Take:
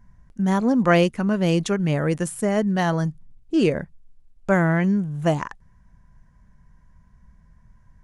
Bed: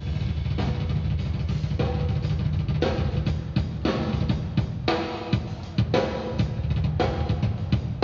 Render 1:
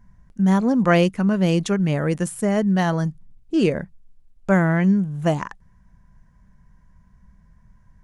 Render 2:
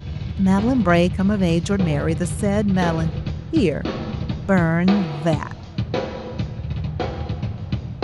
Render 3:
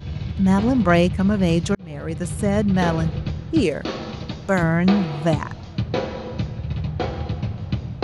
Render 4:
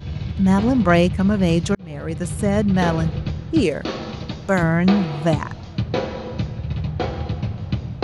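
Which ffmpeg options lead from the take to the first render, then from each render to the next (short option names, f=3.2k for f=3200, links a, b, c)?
-af "equalizer=f=190:w=7.2:g=4.5"
-filter_complex "[1:a]volume=-1.5dB[a];[0:a][a]amix=inputs=2:normalize=0"
-filter_complex "[0:a]asettb=1/sr,asplit=3[a][b][c];[a]atrim=end=3.624[d];[b]atrim=start=3.62:end=4.63,asetpts=PTS-STARTPTS,afade=t=in:d=0.004:c=qsin,afade=t=out:st=1.006:d=0.004:c=qsin,bass=f=250:g=-7,treble=f=4k:g=6[e];[c]atrim=start=4.626[f];[d][e]acrossfade=d=0.004:c1=hsin:c2=qsin[g];[g][f]acrossfade=d=0.004:c1=qsin:c2=hsin,asplit=2[h][i];[h]atrim=end=1.75,asetpts=PTS-STARTPTS,afade=t=out:st=1.746:d=0.004:c=hsin[j];[i]atrim=start=1.75,asetpts=PTS-STARTPTS,afade=t=in:d=0.74[k];[j][k]concat=n=2:v=0:a=1"
-af "volume=1dB"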